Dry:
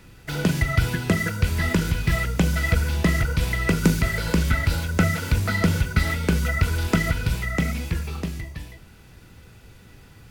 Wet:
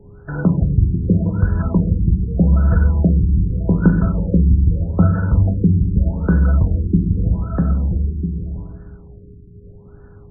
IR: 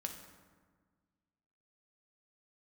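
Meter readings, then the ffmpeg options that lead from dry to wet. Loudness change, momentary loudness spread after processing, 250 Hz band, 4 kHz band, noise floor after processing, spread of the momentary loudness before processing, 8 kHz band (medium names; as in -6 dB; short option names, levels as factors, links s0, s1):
+6.0 dB, 6 LU, +7.5 dB, under -40 dB, -42 dBFS, 7 LU, under -40 dB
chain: -filter_complex "[0:a]aeval=exprs='val(0)+0.00282*sin(2*PI*410*n/s)':c=same,asplit=2[s0][s1];[1:a]atrim=start_sample=2205,lowshelf=f=220:g=8[s2];[s1][s2]afir=irnorm=-1:irlink=0,volume=1.41[s3];[s0][s3]amix=inputs=2:normalize=0,afftfilt=real='re*lt(b*sr/1024,390*pow(1800/390,0.5+0.5*sin(2*PI*0.82*pts/sr)))':imag='im*lt(b*sr/1024,390*pow(1800/390,0.5+0.5*sin(2*PI*0.82*pts/sr)))':win_size=1024:overlap=0.75,volume=0.596"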